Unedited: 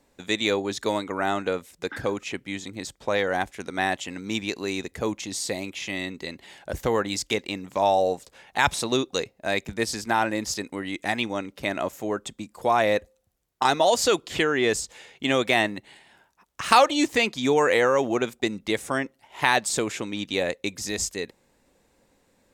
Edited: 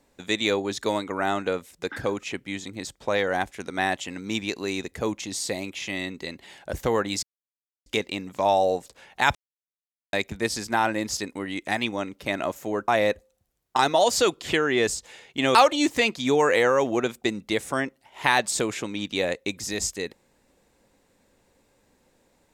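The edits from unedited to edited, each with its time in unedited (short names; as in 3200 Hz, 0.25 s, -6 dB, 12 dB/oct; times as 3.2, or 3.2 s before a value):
7.23 insert silence 0.63 s
8.72–9.5 mute
12.25–12.74 cut
15.41–16.73 cut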